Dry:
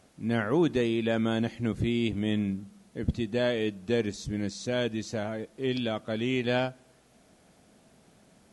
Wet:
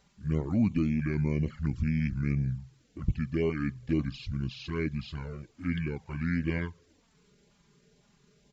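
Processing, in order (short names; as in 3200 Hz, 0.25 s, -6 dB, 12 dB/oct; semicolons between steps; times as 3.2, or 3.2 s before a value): LFO notch saw up 2 Hz 500–2100 Hz; pitch shift -7 st; envelope flanger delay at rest 5.2 ms, full sweep at -23 dBFS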